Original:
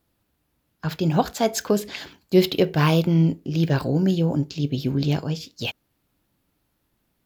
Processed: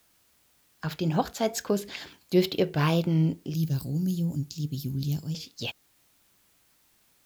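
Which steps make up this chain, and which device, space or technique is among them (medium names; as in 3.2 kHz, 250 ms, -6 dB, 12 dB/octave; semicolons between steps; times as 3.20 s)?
3.54–5.35 s: FFT filter 170 Hz 0 dB, 520 Hz -16 dB, 2 kHz -19 dB, 10 kHz +10 dB; noise-reduction cassette on a plain deck (tape noise reduction on one side only encoder only; wow and flutter; white noise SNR 37 dB); trim -5.5 dB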